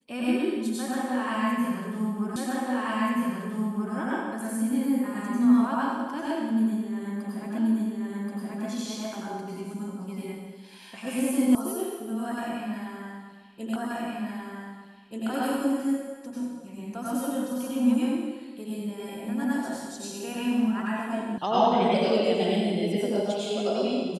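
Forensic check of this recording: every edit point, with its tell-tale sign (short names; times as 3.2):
2.36 repeat of the last 1.58 s
7.58 repeat of the last 1.08 s
11.55 sound cut off
13.76 repeat of the last 1.53 s
21.38 sound cut off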